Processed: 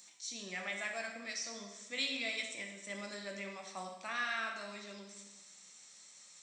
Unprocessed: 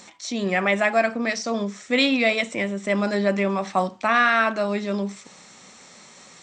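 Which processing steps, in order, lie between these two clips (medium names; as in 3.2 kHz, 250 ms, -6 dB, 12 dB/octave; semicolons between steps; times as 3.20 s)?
high-pass 51 Hz; pre-emphasis filter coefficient 0.9; plate-style reverb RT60 1.1 s, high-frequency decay 0.9×, DRR 2 dB; trim -7.5 dB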